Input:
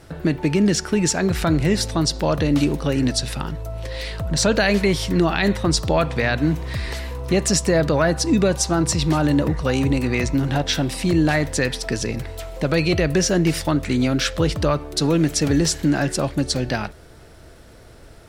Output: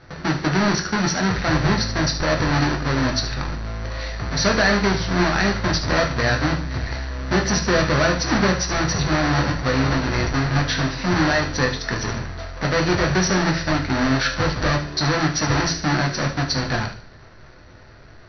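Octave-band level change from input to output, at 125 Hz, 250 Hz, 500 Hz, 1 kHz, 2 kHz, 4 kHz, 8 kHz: 0.0, -2.5, -2.0, +4.5, +4.5, +1.5, -2.5 dB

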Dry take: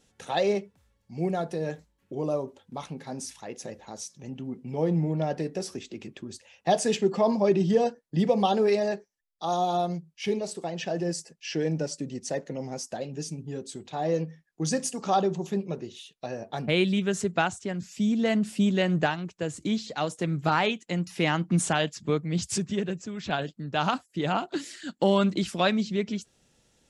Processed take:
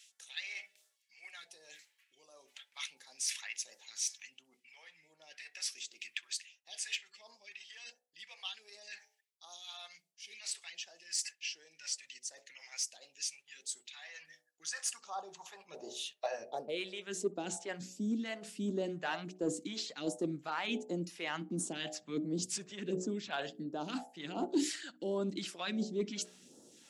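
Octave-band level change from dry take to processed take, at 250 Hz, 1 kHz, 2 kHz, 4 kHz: -13.0, -16.5, -9.5, -6.0 dB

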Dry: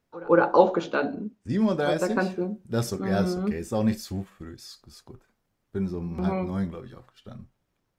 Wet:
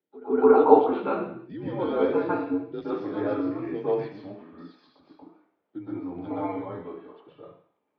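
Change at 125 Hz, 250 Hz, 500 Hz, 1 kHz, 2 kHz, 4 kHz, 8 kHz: -11.0 dB, -1.5 dB, +2.5 dB, +1.5 dB, -8.0 dB, under -10 dB, under -35 dB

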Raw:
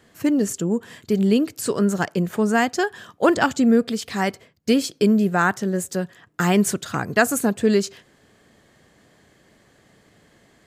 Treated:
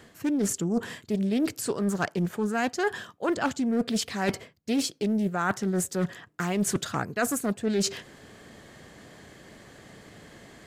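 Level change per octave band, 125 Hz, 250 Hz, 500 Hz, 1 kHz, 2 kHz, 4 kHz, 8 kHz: -6.0, -7.0, -8.0, -7.5, -8.0, -4.0, -3.0 dB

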